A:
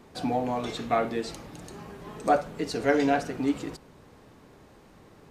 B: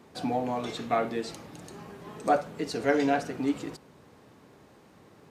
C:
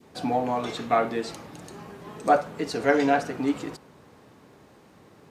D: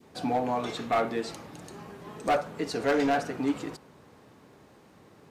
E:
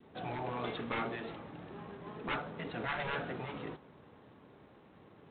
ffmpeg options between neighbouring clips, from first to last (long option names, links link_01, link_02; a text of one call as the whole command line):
ffmpeg -i in.wav -af "highpass=90,volume=-1.5dB" out.wav
ffmpeg -i in.wav -af "adynamicequalizer=threshold=0.0112:dfrequency=1100:dqfactor=0.75:tfrequency=1100:tqfactor=0.75:attack=5:release=100:ratio=0.375:range=2:mode=boostabove:tftype=bell,volume=2dB" out.wav
ffmpeg -i in.wav -af "asoftclip=type=hard:threshold=-18dB,volume=-2dB" out.wav
ffmpeg -i in.wav -af "adynamicsmooth=sensitivity=7.5:basefreq=3100,afftfilt=real='re*lt(hypot(re,im),0.158)':imag='im*lt(hypot(re,im),0.158)':win_size=1024:overlap=0.75,volume=-2.5dB" -ar 8000 -c:a adpcm_g726 -b:a 24k out.wav